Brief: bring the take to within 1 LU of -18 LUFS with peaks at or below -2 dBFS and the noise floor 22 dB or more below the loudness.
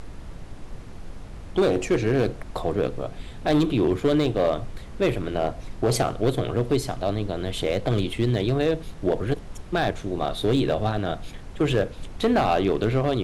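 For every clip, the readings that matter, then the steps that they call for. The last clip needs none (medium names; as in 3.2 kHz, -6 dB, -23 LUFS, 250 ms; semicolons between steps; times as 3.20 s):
clipped samples 1.1%; clipping level -14.0 dBFS; noise floor -40 dBFS; noise floor target -47 dBFS; loudness -25.0 LUFS; peak level -14.0 dBFS; loudness target -18.0 LUFS
-> clip repair -14 dBFS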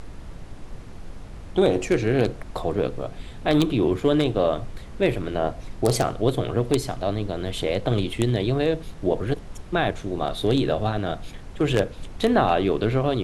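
clipped samples 0.0%; noise floor -40 dBFS; noise floor target -46 dBFS
-> noise print and reduce 6 dB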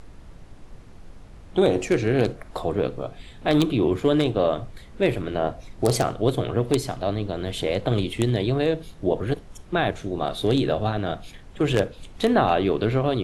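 noise floor -45 dBFS; noise floor target -46 dBFS
-> noise print and reduce 6 dB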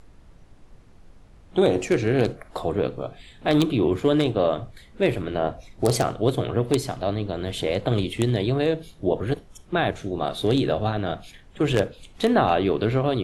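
noise floor -51 dBFS; loudness -24.0 LUFS; peak level -5.0 dBFS; loudness target -18.0 LUFS
-> trim +6 dB; peak limiter -2 dBFS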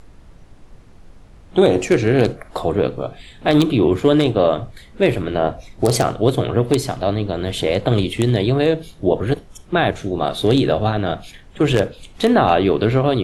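loudness -18.5 LUFS; peak level -2.0 dBFS; noise floor -45 dBFS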